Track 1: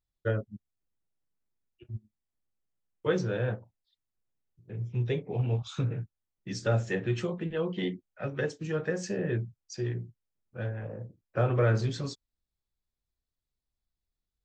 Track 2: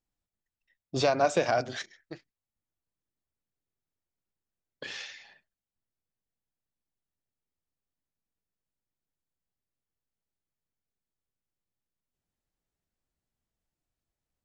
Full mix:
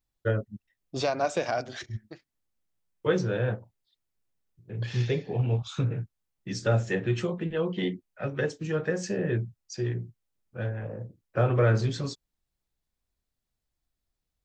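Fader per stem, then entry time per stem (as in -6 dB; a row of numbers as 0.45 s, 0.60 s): +2.5 dB, -2.5 dB; 0.00 s, 0.00 s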